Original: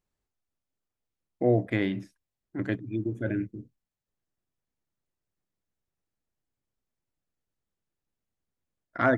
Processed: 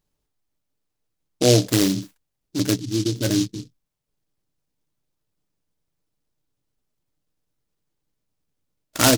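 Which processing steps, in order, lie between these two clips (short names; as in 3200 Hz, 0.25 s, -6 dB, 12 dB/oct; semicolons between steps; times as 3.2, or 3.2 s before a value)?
notch 710 Hz, Q 14; comb 6.7 ms, depth 33%; noise-modulated delay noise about 4600 Hz, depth 0.15 ms; gain +7.5 dB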